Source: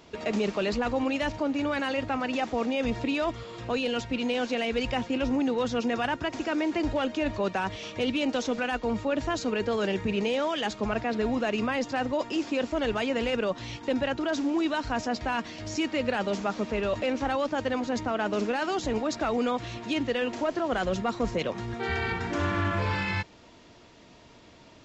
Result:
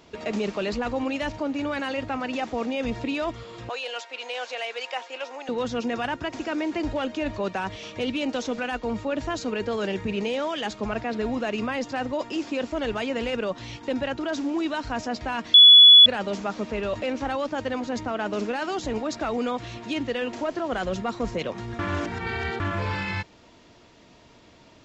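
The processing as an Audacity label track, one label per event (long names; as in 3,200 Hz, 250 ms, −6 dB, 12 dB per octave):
3.690000	5.490000	high-pass filter 560 Hz 24 dB per octave
15.540000	16.060000	beep over 3,410 Hz −7 dBFS
21.790000	22.600000	reverse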